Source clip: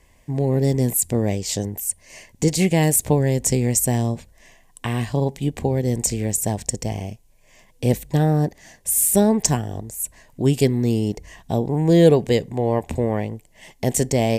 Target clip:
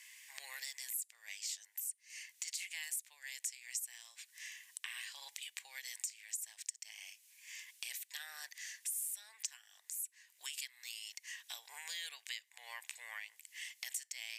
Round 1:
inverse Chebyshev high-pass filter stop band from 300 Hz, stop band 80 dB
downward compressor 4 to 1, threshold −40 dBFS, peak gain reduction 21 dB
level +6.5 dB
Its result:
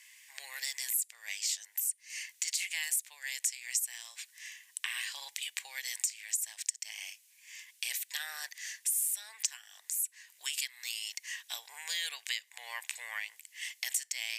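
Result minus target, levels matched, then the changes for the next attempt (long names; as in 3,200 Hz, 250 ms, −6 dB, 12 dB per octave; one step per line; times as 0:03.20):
downward compressor: peak gain reduction −8.5 dB
change: downward compressor 4 to 1, threshold −51.5 dBFS, peak gain reduction 30 dB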